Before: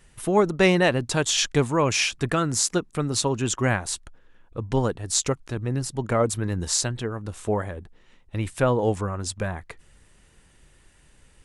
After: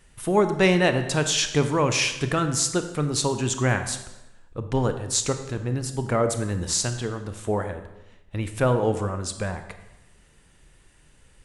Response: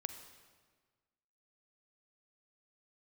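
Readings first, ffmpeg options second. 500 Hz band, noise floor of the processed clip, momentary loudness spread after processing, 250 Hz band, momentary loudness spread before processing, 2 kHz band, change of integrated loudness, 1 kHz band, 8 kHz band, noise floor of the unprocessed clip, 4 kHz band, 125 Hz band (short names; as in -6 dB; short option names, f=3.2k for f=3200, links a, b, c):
0.0 dB, -56 dBFS, 12 LU, 0.0 dB, 11 LU, 0.0 dB, 0.0 dB, 0.0 dB, 0.0 dB, -57 dBFS, 0.0 dB, +0.5 dB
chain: -filter_complex "[1:a]atrim=start_sample=2205,asetrate=70560,aresample=44100[a];[0:a][a]afir=irnorm=-1:irlink=0,volume=5.5dB"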